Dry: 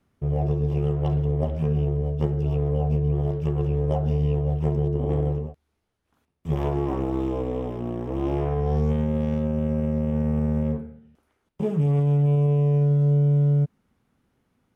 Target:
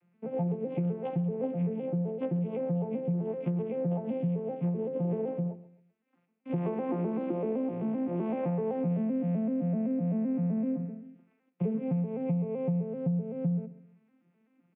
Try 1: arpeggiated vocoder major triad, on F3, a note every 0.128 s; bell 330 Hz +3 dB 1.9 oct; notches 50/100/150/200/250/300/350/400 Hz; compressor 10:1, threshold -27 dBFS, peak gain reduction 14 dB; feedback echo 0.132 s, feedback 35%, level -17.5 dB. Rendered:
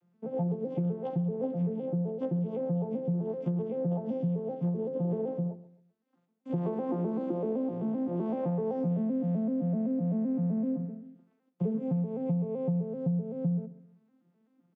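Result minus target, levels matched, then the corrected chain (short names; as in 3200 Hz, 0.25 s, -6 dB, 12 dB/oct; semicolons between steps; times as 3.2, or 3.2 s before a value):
2000 Hz band -7.0 dB
arpeggiated vocoder major triad, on F3, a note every 0.128 s; synth low-pass 2400 Hz, resonance Q 4; bell 330 Hz +3 dB 1.9 oct; notches 50/100/150/200/250/300/350/400 Hz; compressor 10:1, threshold -27 dBFS, peak gain reduction 14 dB; feedback echo 0.132 s, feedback 35%, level -17.5 dB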